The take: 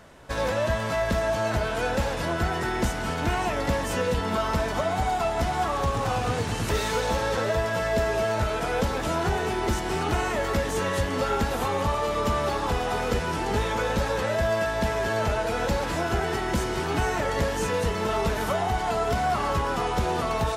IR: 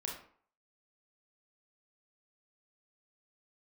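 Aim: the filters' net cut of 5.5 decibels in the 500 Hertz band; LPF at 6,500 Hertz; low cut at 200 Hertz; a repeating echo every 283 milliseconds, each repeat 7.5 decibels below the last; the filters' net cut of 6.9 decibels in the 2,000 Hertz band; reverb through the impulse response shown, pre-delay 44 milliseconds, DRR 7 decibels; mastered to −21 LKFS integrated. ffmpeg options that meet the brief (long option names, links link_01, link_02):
-filter_complex "[0:a]highpass=200,lowpass=6500,equalizer=frequency=500:width_type=o:gain=-6.5,equalizer=frequency=2000:width_type=o:gain=-9,aecho=1:1:283|566|849|1132|1415:0.422|0.177|0.0744|0.0312|0.0131,asplit=2[link_01][link_02];[1:a]atrim=start_sample=2205,adelay=44[link_03];[link_02][link_03]afir=irnorm=-1:irlink=0,volume=-7.5dB[link_04];[link_01][link_04]amix=inputs=2:normalize=0,volume=9dB"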